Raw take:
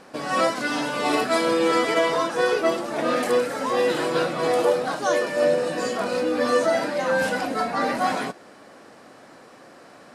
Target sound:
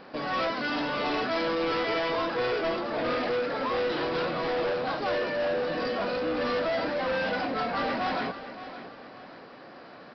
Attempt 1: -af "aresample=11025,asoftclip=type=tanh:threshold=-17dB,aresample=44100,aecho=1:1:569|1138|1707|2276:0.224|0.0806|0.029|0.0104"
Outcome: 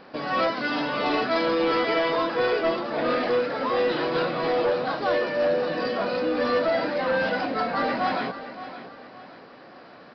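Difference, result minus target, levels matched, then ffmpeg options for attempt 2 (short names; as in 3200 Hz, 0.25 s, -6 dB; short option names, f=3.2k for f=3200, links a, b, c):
soft clip: distortion -8 dB
-af "aresample=11025,asoftclip=type=tanh:threshold=-25.5dB,aresample=44100,aecho=1:1:569|1138|1707|2276:0.224|0.0806|0.029|0.0104"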